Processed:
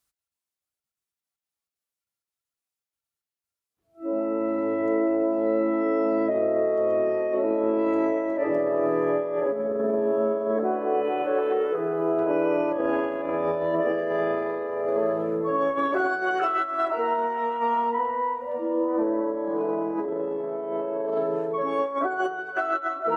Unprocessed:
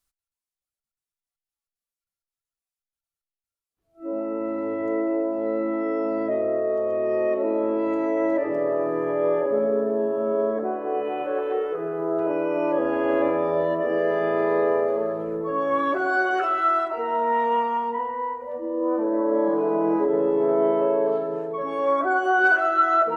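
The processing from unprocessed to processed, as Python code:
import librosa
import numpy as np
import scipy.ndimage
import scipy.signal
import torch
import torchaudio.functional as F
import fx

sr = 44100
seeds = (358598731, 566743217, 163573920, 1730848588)

p1 = scipy.signal.sosfilt(scipy.signal.butter(2, 66.0, 'highpass', fs=sr, output='sos'), x)
p2 = fx.over_compress(p1, sr, threshold_db=-24.0, ratio=-0.5)
y = p2 + fx.echo_single(p2, sr, ms=947, db=-19.0, dry=0)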